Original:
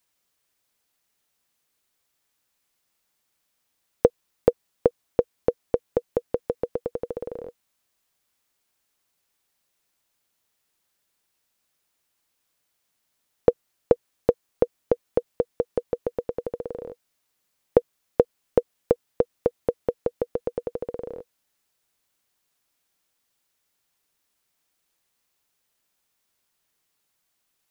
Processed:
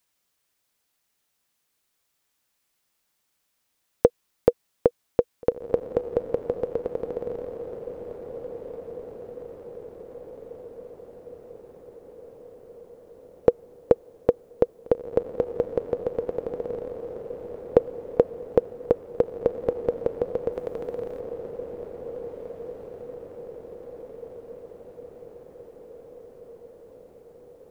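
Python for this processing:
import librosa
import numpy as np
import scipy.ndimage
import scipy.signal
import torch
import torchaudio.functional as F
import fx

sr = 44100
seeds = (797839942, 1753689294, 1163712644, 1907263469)

y = fx.tilt_shelf(x, sr, db=-5.5, hz=970.0, at=(20.52, 21.2))
y = fx.echo_diffused(y, sr, ms=1872, feedback_pct=60, wet_db=-10)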